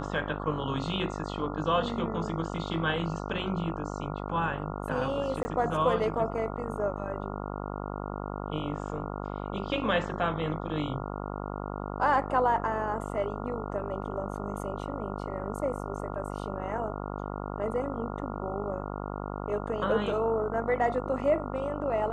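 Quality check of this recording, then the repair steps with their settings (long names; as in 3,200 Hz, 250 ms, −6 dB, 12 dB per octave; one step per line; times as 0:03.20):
mains buzz 50 Hz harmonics 28 −36 dBFS
0:05.43–0:05.45: drop-out 20 ms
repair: hum removal 50 Hz, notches 28
repair the gap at 0:05.43, 20 ms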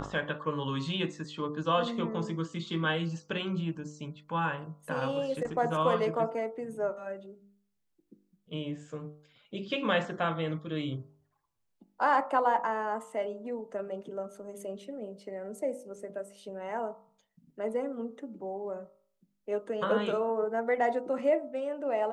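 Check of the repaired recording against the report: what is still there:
none of them is left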